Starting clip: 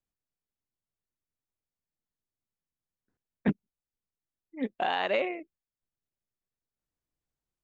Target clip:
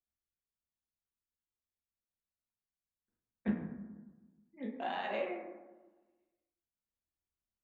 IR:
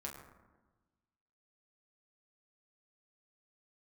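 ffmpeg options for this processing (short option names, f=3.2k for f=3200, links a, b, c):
-filter_complex "[1:a]atrim=start_sample=2205[a];[0:a][a]afir=irnorm=-1:irlink=0,volume=-7dB"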